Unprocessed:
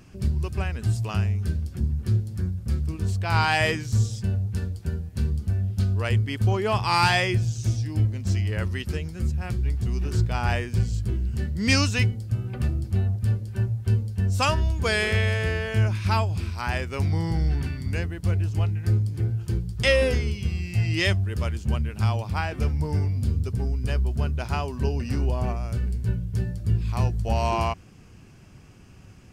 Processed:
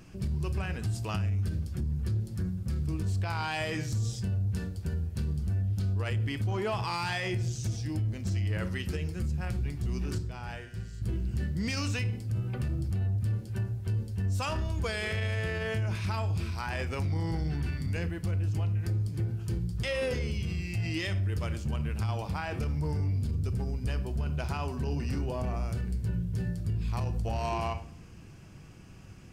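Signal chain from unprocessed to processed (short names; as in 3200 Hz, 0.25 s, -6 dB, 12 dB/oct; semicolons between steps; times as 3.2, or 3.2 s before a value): 10.18–11.02 resonator 130 Hz, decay 1.8 s, mix 80%; shoebox room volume 720 m³, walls furnished, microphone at 0.67 m; in parallel at -6 dB: soft clip -25 dBFS, distortion -9 dB; on the sum: limiter -19 dBFS, peak gain reduction 11 dB; gain -5 dB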